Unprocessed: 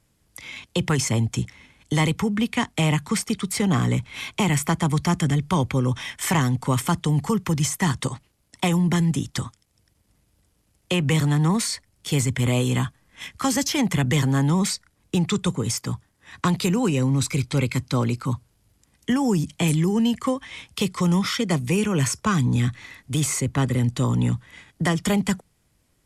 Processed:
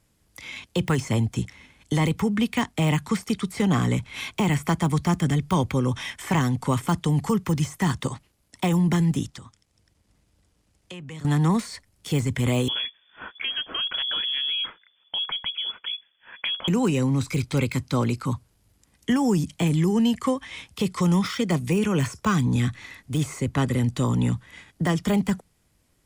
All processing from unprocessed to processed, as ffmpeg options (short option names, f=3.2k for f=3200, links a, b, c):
-filter_complex "[0:a]asettb=1/sr,asplit=3[a][b][c];[a]atrim=end=9.274[d];[b]atrim=start=9.27:end=11.25,asetpts=PTS-STARTPTS,afade=t=in:d=0.004:c=qsin,afade=t=out:st=1.976:d=0.004:c=qsin,lowpass=8.9k,acompressor=threshold=-44dB:ratio=2.5:attack=3.2:release=140:knee=1:detection=peak[e];[c]atrim=start=11.246[f];[d][e]acrossfade=d=0.004:c1=hsin:c2=qsin[g];[g][f]acrossfade=d=0.004:c1=qsin:c2=hsin,asettb=1/sr,asplit=3[h][i][j];[h]atrim=end=12.684[k];[i]atrim=start=12.68:end=16.68,asetpts=PTS-STARTPTS,afade=t=in:d=0.004:c=qsin,afade=t=out:st=3.996:d=0.004:c=qsin,acompressor=threshold=-28dB:ratio=2:attack=3.2:release=140:knee=1:detection=peak,lowpass=f=3k:t=q:w=0.5098,lowpass=f=3k:t=q:w=0.6013,lowpass=f=3k:t=q:w=0.9,lowpass=f=3k:t=q:w=2.563,afreqshift=-3500[l];[j]atrim=start=16.676[m];[k][l]acrossfade=d=0.004:c1=hsin:c2=qsin[n];[n][m]acrossfade=d=0.004:c1=qsin:c2=hsin,deesser=0.7,equalizer=f=130:t=o:w=0.3:g=-3"